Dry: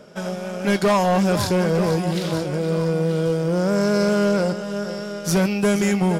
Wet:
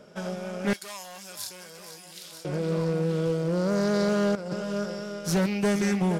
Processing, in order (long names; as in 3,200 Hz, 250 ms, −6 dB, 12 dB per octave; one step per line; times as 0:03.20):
0:00.73–0:02.45: first-order pre-emphasis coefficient 0.97
0:04.35–0:04.86: compressor whose output falls as the input rises −24 dBFS, ratio −0.5
highs frequency-modulated by the lows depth 0.17 ms
level −5.5 dB